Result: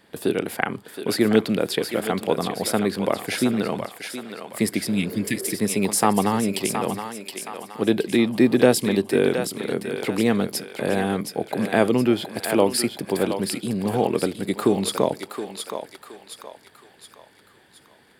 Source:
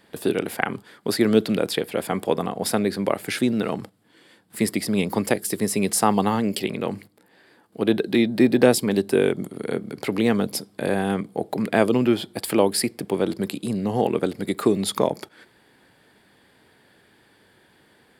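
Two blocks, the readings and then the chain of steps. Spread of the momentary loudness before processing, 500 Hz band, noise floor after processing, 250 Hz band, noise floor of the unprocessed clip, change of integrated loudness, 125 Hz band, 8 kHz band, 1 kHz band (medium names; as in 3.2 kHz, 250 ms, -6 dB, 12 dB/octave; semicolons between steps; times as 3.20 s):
9 LU, 0.0 dB, -55 dBFS, 0.0 dB, -59 dBFS, 0.0 dB, 0.0 dB, +1.0 dB, +0.5 dB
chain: thinning echo 720 ms, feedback 48%, high-pass 620 Hz, level -6 dB; spectral replace 4.93–5.52 s, 350–1700 Hz both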